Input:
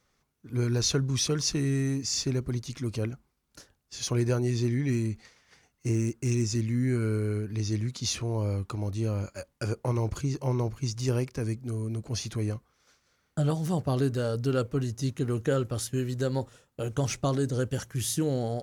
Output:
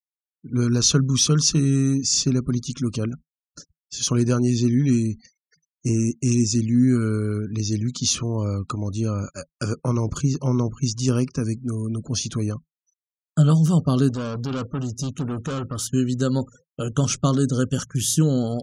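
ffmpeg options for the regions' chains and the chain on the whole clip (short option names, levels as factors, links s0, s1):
-filter_complex "[0:a]asettb=1/sr,asplit=3[s0][s1][s2];[s0]atrim=end=14.094[s3];[s1]atrim=start=14.09:end=15.88,asetpts=PTS-STARTPTS,afade=t=in:d=0.004:c=qsin,afade=t=out:st=1.786:d=0.004:c=qsin,acrusher=bits=9:mode=log:mix=0:aa=0.000001,asoftclip=type=hard:threshold=0.0266[s4];[s2]atrim=start=15.876[s5];[s3][s4]acrossfade=d=0.004:c1=hsin:c2=qsin[s6];[s6][s5]acrossfade=d=0.004:c1=qsin:c2=hsin,equalizer=f=6700:w=1.2:g=7.5,afftfilt=real='re*gte(hypot(re,im),0.00447)':imag='im*gte(hypot(re,im),0.00447)':win_size=1024:overlap=0.75,equalizer=f=160:t=o:w=0.33:g=11,equalizer=f=250:t=o:w=0.33:g=9,equalizer=f=800:t=o:w=0.33:g=-5,equalizer=f=1250:t=o:w=0.33:g=10,equalizer=f=2000:t=o:w=0.33:g=-9,equalizer=f=3150:t=o:w=0.33:g=6,volume=1.41"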